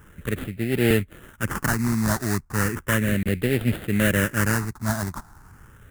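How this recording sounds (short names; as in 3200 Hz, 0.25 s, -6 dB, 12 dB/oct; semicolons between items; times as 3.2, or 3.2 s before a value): aliases and images of a low sample rate 2300 Hz, jitter 20%; phasing stages 4, 0.35 Hz, lowest notch 480–1000 Hz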